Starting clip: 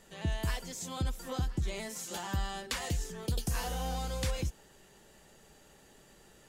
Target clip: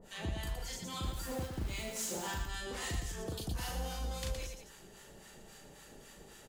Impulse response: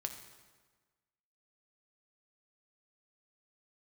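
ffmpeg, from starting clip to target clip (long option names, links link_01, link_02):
-filter_complex "[0:a]acompressor=threshold=-39dB:ratio=4,acrossover=split=830[link_01][link_02];[link_01]aeval=exprs='val(0)*(1-1/2+1/2*cos(2*PI*3.7*n/s))':channel_layout=same[link_03];[link_02]aeval=exprs='val(0)*(1-1/2-1/2*cos(2*PI*3.7*n/s))':channel_layout=same[link_04];[link_03][link_04]amix=inputs=2:normalize=0,asettb=1/sr,asplit=3[link_05][link_06][link_07];[link_05]atrim=end=1.034[link_08];[link_06]atrim=start=1.03:end=2.31,asetpts=PTS-STARTPTS,afade=type=in:duration=0.004:curve=qsin,afade=type=out:start_time=1.276:duration=0.004:curve=qsin,acrusher=bits=2:mode=log:mix=0:aa=0.000001[link_09];[link_07]atrim=start=2.306[link_10];[link_08][link_09]acrossfade=duration=0.004:curve1=hsin:curve2=qsin[link_11];[link_11][link_10]acrossfade=duration=0.004:curve1=qsin:curve2=hsin,asoftclip=type=tanh:threshold=-38dB,aecho=1:1:37.9|116.6|207:0.708|0.562|0.316,volume=6dB"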